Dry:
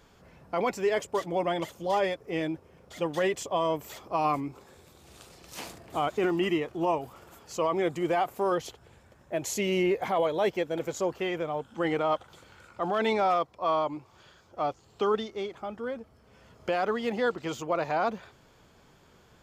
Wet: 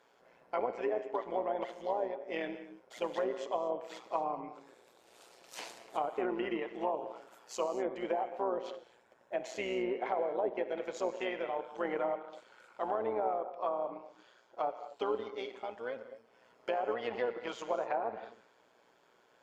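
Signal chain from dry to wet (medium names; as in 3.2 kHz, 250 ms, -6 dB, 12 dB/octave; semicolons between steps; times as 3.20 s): high-pass 470 Hz 12 dB/octave; band-stop 1.2 kHz, Q 14; low-pass that closes with the level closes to 620 Hz, closed at -24.5 dBFS; gated-style reverb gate 270 ms flat, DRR 9 dB; AM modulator 120 Hz, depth 45%; tape noise reduction on one side only decoder only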